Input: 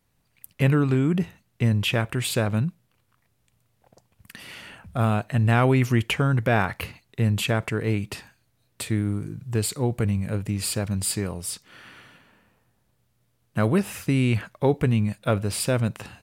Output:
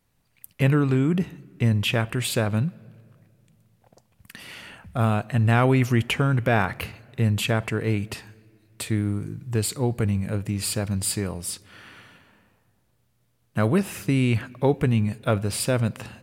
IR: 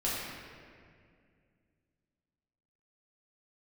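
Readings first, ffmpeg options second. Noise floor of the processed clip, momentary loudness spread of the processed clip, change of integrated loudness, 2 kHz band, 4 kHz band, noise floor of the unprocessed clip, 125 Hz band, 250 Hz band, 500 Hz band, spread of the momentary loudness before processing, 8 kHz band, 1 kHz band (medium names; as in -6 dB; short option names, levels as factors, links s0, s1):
-67 dBFS, 12 LU, 0.0 dB, +0.5 dB, +0.5 dB, -69 dBFS, 0.0 dB, +0.5 dB, 0.0 dB, 12 LU, +0.5 dB, +0.5 dB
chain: -filter_complex "[0:a]asplit=2[s0][s1];[1:a]atrim=start_sample=2205[s2];[s1][s2]afir=irnorm=-1:irlink=0,volume=0.0355[s3];[s0][s3]amix=inputs=2:normalize=0"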